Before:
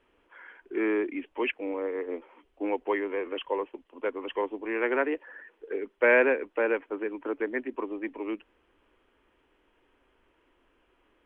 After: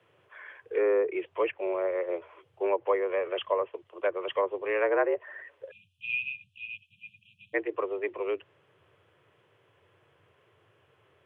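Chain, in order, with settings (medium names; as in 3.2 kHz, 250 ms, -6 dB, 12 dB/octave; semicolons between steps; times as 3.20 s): frequency shift +84 Hz; spectral selection erased 5.71–7.54 s, 220–2400 Hz; low-pass that closes with the level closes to 1.3 kHz, closed at -24 dBFS; trim +2.5 dB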